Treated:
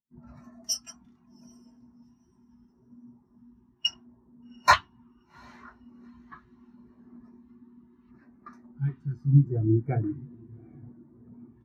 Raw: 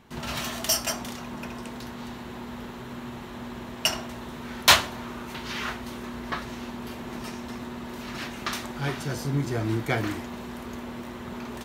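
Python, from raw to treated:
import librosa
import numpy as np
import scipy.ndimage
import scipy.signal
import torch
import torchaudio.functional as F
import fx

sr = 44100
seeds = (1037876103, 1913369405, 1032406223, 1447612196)

y = fx.filter_lfo_notch(x, sr, shape='square', hz=0.74, low_hz=540.0, high_hz=3200.0, q=1.3)
y = fx.echo_diffused(y, sr, ms=781, feedback_pct=57, wet_db=-10.0)
y = fx.spectral_expand(y, sr, expansion=2.5)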